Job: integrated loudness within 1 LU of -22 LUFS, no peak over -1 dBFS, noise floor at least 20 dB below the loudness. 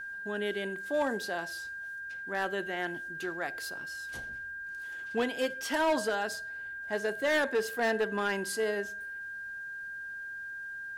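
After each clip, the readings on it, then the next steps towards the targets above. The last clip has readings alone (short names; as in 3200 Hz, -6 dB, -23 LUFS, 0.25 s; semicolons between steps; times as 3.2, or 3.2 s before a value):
clipped 1.0%; flat tops at -23.0 dBFS; steady tone 1600 Hz; tone level -38 dBFS; loudness -33.5 LUFS; peak -23.0 dBFS; loudness target -22.0 LUFS
-> clip repair -23 dBFS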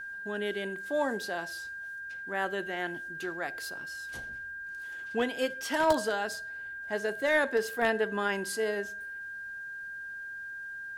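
clipped 0.0%; steady tone 1600 Hz; tone level -38 dBFS
-> notch 1600 Hz, Q 30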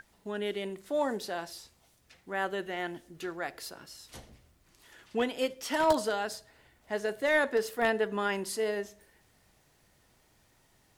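steady tone none; loudness -32.0 LUFS; peak -13.5 dBFS; loudness target -22.0 LUFS
-> gain +10 dB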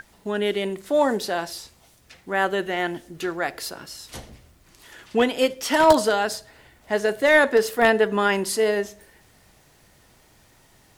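loudness -22.0 LUFS; peak -3.5 dBFS; noise floor -57 dBFS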